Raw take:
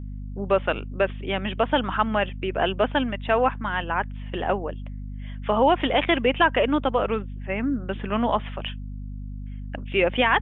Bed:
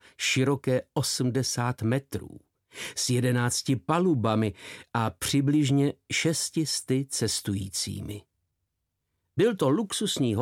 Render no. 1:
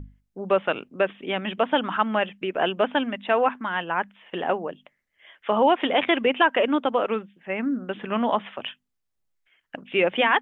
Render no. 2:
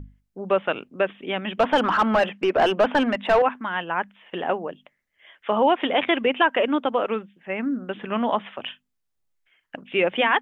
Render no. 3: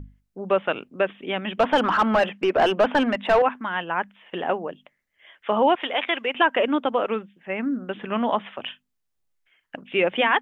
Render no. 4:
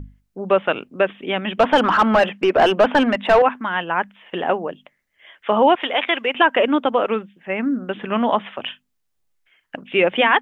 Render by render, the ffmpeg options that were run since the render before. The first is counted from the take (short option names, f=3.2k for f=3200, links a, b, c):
-af "bandreject=f=50:t=h:w=6,bandreject=f=100:t=h:w=6,bandreject=f=150:t=h:w=6,bandreject=f=200:t=h:w=6,bandreject=f=250:t=h:w=6"
-filter_complex "[0:a]asettb=1/sr,asplit=3[a][b][c];[a]atrim=end=1.594[d];[b]atrim=start=1.59:end=3.42,asetpts=PTS-STARTPTS,afade=t=in:d=0.004:c=qsin,afade=t=out:st=1.826:d=0.004:c=qsin,asplit=2[e][f];[f]highpass=f=720:p=1,volume=22dB,asoftclip=type=tanh:threshold=-7.5dB[g];[e][g]amix=inputs=2:normalize=0,lowpass=f=1k:p=1,volume=-6dB[h];[c]atrim=start=3.416[i];[d][h]acrossfade=d=0.004:c1=hsin:c2=qsin[j];[j][i]acrossfade=d=0.004:c1=qsin:c2=hsin,asettb=1/sr,asplit=3[k][l][m];[k]atrim=end=8.604[n];[l]atrim=start=8.6:end=9.76,asetpts=PTS-STARTPTS,afade=t=in:d=0.004:c=qsin,afade=t=out:st=1.156:d=0.004:c=qsin,asplit=2[o][p];[p]adelay=40,volume=-12dB[q];[o][q]amix=inputs=2:normalize=0,atrim=end_sample=51156[r];[m]atrim=start=9.756[s];[n][r]acrossfade=d=0.004:c1=hsin:c2=qsin[t];[t][s]acrossfade=d=0.004:c1=qsin:c2=hsin"
-filter_complex "[0:a]asettb=1/sr,asplit=3[a][b][c];[a]atrim=end=5.754[d];[b]atrim=start=5.75:end=6.35,asetpts=PTS-STARTPTS,afade=t=in:d=0.004:c=qsin,afade=t=out:st=0.596:d=0.004:c=qsin,highpass=f=900:p=1[e];[c]atrim=start=6.346[f];[d][e]acrossfade=d=0.004:c1=hsin:c2=qsin[g];[g][f]acrossfade=d=0.004:c1=qsin:c2=hsin"
-af "volume=4.5dB,alimiter=limit=-3dB:level=0:latency=1"